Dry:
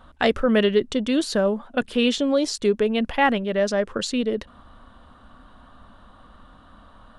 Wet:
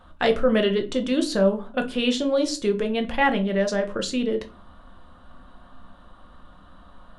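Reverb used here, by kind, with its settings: shoebox room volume 170 m³, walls furnished, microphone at 0.91 m; gain -2.5 dB

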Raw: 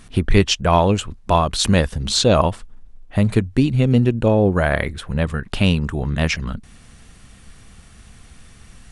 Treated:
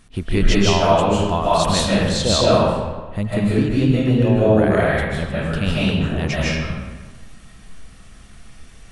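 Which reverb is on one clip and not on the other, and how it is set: digital reverb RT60 1.3 s, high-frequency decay 0.7×, pre-delay 0.11 s, DRR -7.5 dB; gain -7 dB

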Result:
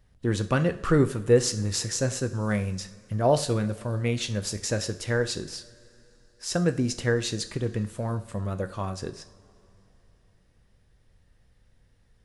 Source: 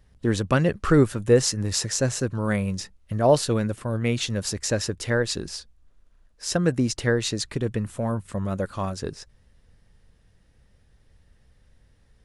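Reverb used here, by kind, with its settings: two-slope reverb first 0.46 s, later 3.6 s, from -20 dB, DRR 8.5 dB; gain -3.5 dB

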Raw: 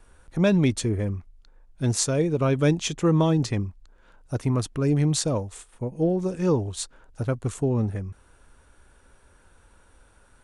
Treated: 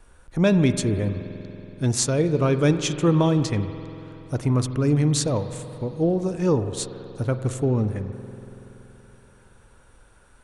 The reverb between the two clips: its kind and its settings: spring tank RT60 3.5 s, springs 47 ms, chirp 45 ms, DRR 9.5 dB; gain +1.5 dB

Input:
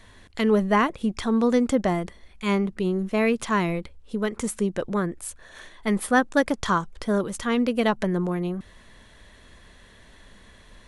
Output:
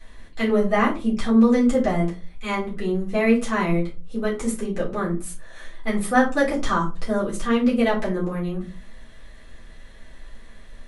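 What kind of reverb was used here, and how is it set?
shoebox room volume 120 m³, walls furnished, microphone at 3.8 m; gain -8 dB

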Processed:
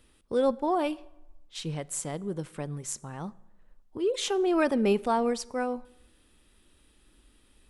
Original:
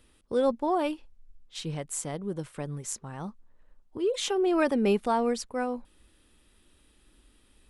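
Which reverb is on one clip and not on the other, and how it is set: plate-style reverb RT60 1 s, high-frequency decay 0.7×, DRR 20 dB

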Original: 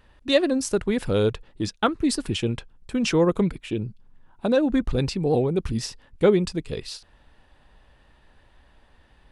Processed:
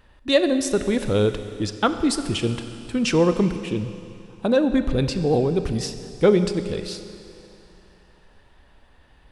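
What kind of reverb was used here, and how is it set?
Schroeder reverb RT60 2.8 s, combs from 30 ms, DRR 9.5 dB; gain +1.5 dB

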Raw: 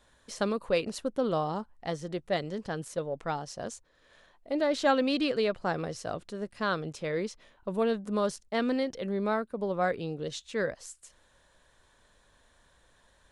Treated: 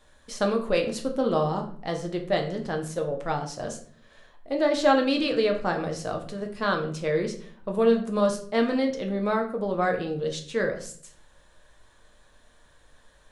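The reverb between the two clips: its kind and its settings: shoebox room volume 60 m³, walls mixed, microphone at 0.5 m; gain +2.5 dB

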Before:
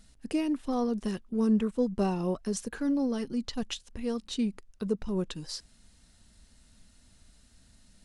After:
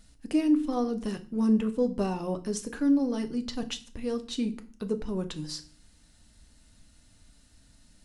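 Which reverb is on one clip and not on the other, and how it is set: FDN reverb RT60 0.4 s, low-frequency decay 1.6×, high-frequency decay 0.95×, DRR 7.5 dB

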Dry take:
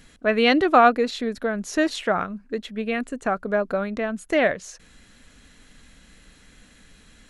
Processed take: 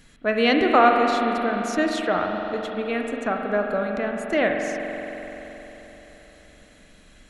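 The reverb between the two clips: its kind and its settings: spring tank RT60 4 s, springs 43 ms, chirp 70 ms, DRR 2 dB; gain -2 dB

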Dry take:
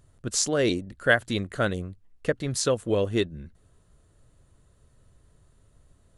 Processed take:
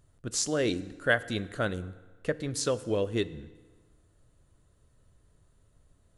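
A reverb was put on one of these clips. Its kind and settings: FDN reverb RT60 1.4 s, low-frequency decay 1×, high-frequency decay 0.8×, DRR 15 dB; gain -4.5 dB

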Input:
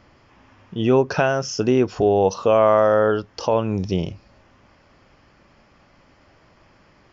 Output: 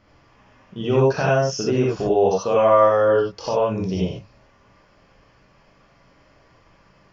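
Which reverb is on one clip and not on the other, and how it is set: non-linear reverb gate 0.11 s rising, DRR -4.5 dB; gain -6.5 dB

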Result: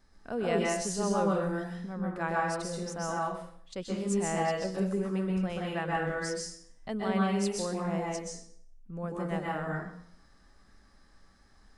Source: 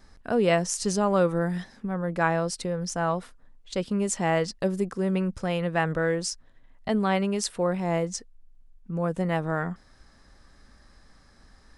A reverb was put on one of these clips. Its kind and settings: plate-style reverb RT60 0.61 s, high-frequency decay 0.9×, pre-delay 0.115 s, DRR -3 dB; gain -10 dB

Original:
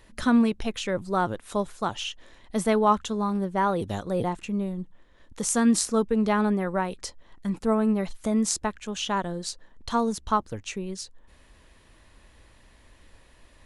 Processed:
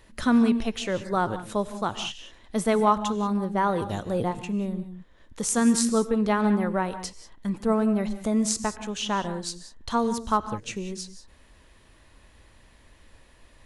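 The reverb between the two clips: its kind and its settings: non-linear reverb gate 0.21 s rising, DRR 11.5 dB

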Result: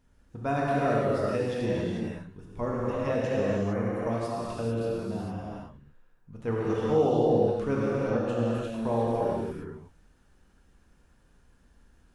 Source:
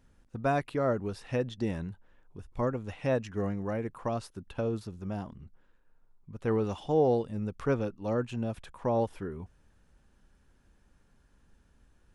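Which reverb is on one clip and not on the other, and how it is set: non-linear reverb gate 0.48 s flat, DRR -6.5 dB; gain -3.5 dB

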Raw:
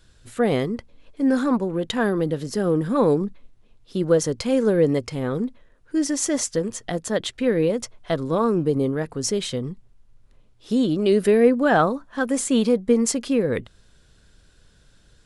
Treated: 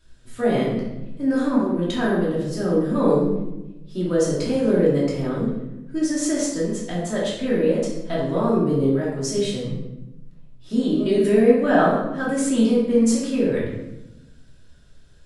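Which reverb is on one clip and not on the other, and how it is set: shoebox room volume 380 m³, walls mixed, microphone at 2.8 m; gain -8.5 dB

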